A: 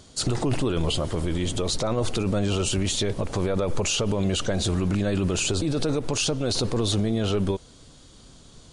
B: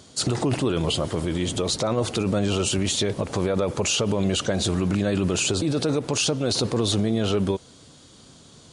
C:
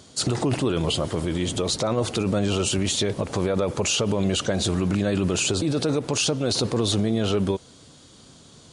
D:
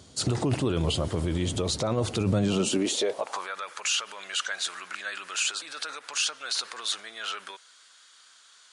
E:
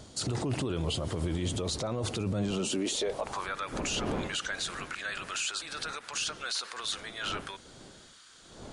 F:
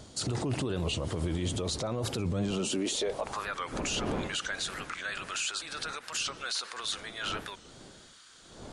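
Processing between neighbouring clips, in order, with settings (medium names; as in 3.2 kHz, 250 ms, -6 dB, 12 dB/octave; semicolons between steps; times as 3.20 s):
high-pass 98 Hz; trim +2 dB
no audible change
high-pass sweep 67 Hz -> 1.5 kHz, 2.14–3.55 s; trim -4 dB
wind noise 490 Hz -42 dBFS; peak limiter -23 dBFS, peak gain reduction 10 dB
warped record 45 rpm, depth 160 cents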